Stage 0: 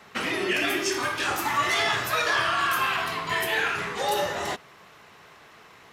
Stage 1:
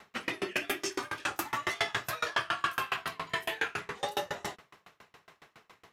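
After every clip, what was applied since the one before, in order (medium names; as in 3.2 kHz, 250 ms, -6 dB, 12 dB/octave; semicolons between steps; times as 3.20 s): sawtooth tremolo in dB decaying 7.2 Hz, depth 30 dB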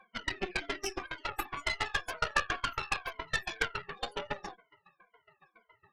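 drifting ripple filter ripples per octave 1.8, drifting -2 Hz, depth 20 dB; loudest bins only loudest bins 32; Chebyshev shaper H 3 -14 dB, 6 -19 dB, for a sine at -12.5 dBFS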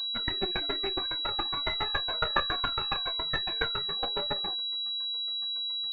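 class-D stage that switches slowly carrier 3.9 kHz; trim +3.5 dB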